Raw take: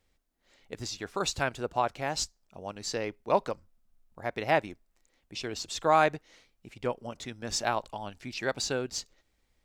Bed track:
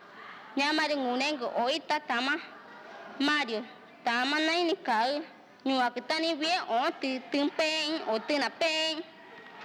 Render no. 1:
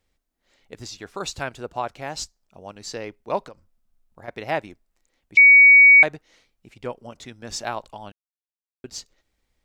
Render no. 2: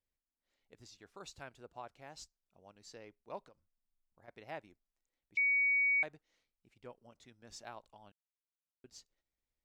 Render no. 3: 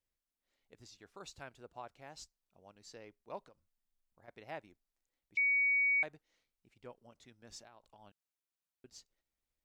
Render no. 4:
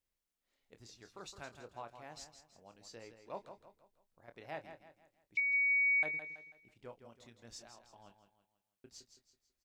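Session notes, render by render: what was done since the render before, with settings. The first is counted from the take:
3.43–4.28 compressor, threshold -37 dBFS; 5.37–6.03 bleep 2250 Hz -7 dBFS; 8.12–8.84 mute
gain -20 dB
7.61–8.01 compressor 8:1, threshold -54 dBFS
doubler 26 ms -10 dB; feedback echo 0.164 s, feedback 40%, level -9.5 dB

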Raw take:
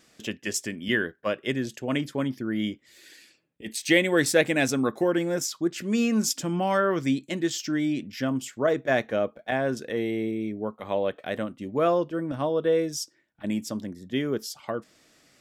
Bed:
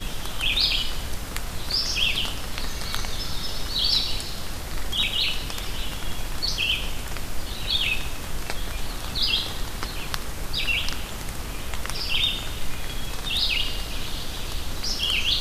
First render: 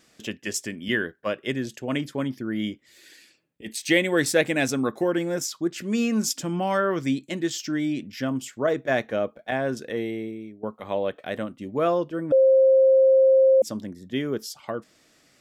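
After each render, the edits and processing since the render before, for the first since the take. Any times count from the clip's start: 9.95–10.63 fade out, to -16 dB; 12.32–13.62 bleep 530 Hz -13 dBFS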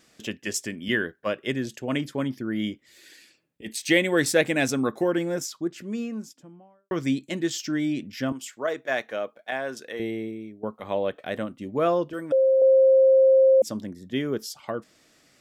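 5.01–6.91 studio fade out; 8.32–10 HPF 770 Hz 6 dB/oct; 12.13–12.62 tilt +3 dB/oct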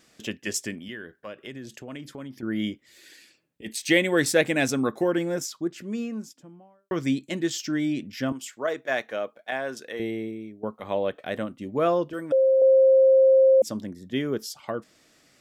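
0.78–2.43 compressor 3:1, threshold -38 dBFS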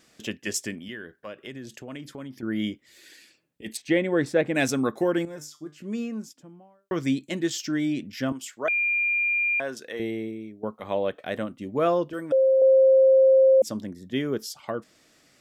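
3.77–4.55 LPF 1000 Hz 6 dB/oct; 5.25–5.82 resonator 150 Hz, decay 0.28 s, mix 80%; 8.68–9.6 bleep 2400 Hz -21 dBFS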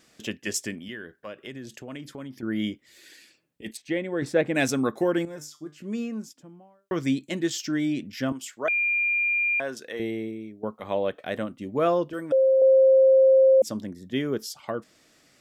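3.71–4.22 gain -5.5 dB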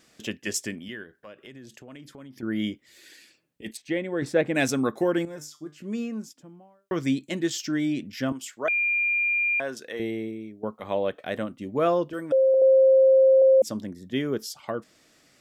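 1.03–2.36 compressor 1.5:1, threshold -51 dBFS; 12.54–13.42 LPF 1200 Hz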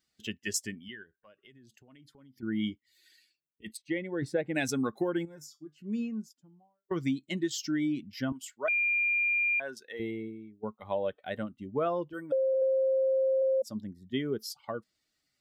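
per-bin expansion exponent 1.5; compressor 6:1, threshold -26 dBFS, peak gain reduction 10 dB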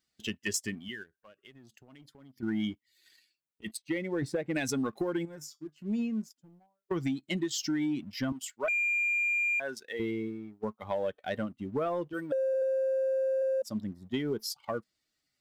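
compressor 16:1, threshold -30 dBFS, peak gain reduction 7 dB; sample leveller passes 1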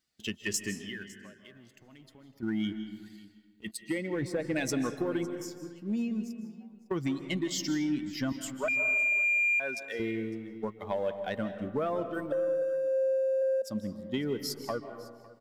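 echo 0.555 s -21 dB; digital reverb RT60 1.5 s, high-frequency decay 0.45×, pre-delay 0.115 s, DRR 9 dB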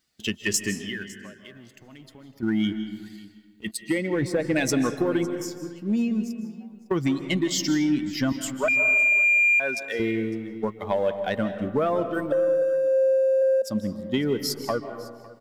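gain +7.5 dB

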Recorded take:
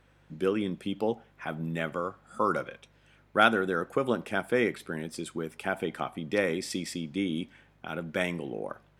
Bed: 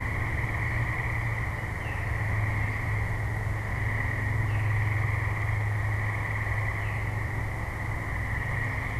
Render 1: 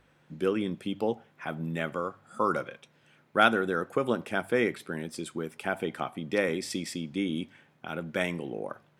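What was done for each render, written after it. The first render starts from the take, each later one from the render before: de-hum 50 Hz, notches 2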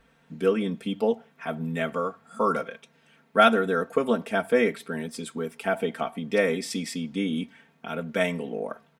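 dynamic EQ 590 Hz, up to +6 dB, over -46 dBFS, Q 4.1; comb 4.4 ms, depth 96%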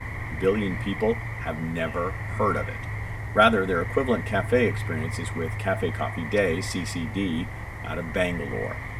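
add bed -3.5 dB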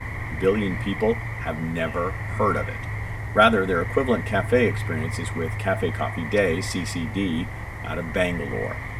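gain +2 dB; limiter -3 dBFS, peak gain reduction 1 dB

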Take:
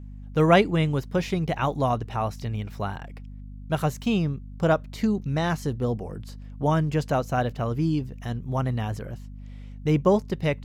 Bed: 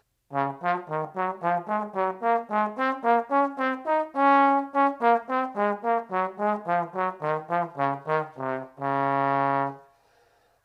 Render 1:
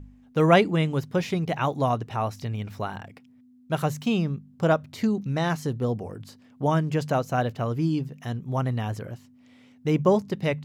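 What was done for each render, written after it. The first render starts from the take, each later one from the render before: de-hum 50 Hz, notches 4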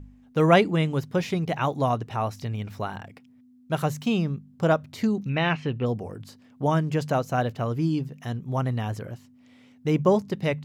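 5.29–5.86 synth low-pass 2600 Hz, resonance Q 5.6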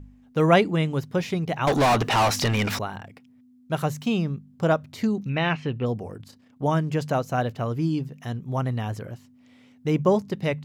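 1.67–2.79 overdrive pedal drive 31 dB, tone 7200 Hz, clips at -13 dBFS; 6.17–6.62 AM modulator 30 Hz, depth 35%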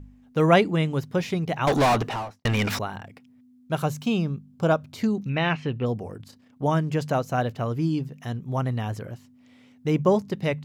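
1.82–2.45 studio fade out; 3.77–5 notch 1900 Hz, Q 6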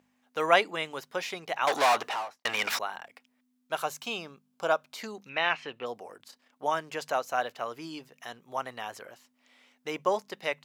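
HPF 720 Hz 12 dB/oct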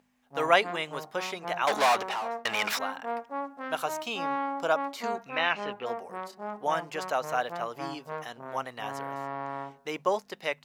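add bed -12 dB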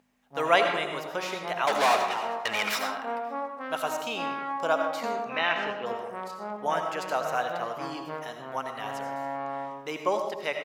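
outdoor echo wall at 96 m, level -27 dB; digital reverb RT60 0.9 s, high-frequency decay 0.55×, pre-delay 45 ms, DRR 4.5 dB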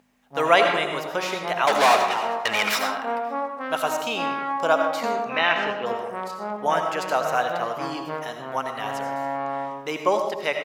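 gain +5.5 dB; limiter -3 dBFS, peak gain reduction 2.5 dB

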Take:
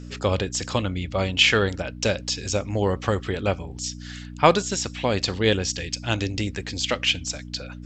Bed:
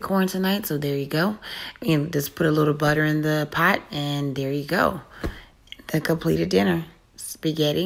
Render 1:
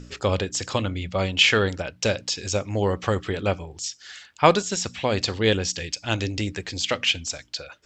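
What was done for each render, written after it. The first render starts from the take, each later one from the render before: de-hum 60 Hz, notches 5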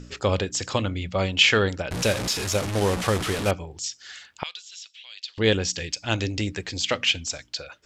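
1.91–3.51 delta modulation 64 kbps, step -22.5 dBFS; 4.43–5.38 ladder band-pass 3800 Hz, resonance 45%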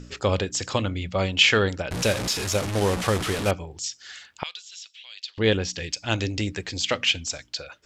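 5.3–5.83 air absorption 79 m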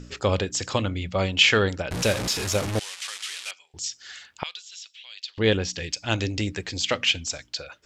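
2.79–3.74 Butterworth band-pass 5000 Hz, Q 0.7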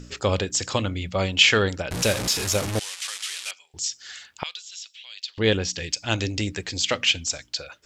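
high shelf 5400 Hz +6 dB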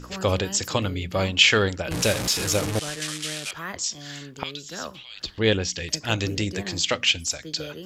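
add bed -15.5 dB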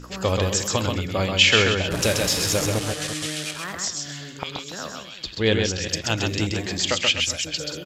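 reverse delay 0.196 s, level -11 dB; echo 0.131 s -4 dB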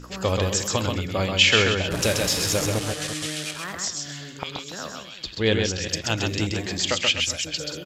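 gain -1 dB

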